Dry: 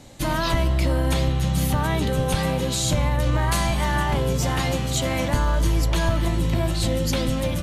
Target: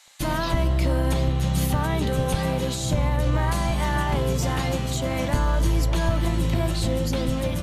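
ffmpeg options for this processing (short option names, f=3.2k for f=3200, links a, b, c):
-filter_complex "[0:a]acrossover=split=1000[a][b];[a]aeval=exprs='sgn(val(0))*max(abs(val(0))-0.01,0)':c=same[c];[b]alimiter=limit=-22dB:level=0:latency=1:release=492[d];[c][d]amix=inputs=2:normalize=0"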